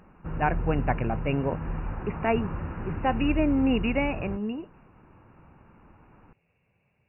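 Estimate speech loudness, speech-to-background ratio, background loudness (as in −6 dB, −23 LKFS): −28.0 LKFS, 6.5 dB, −34.5 LKFS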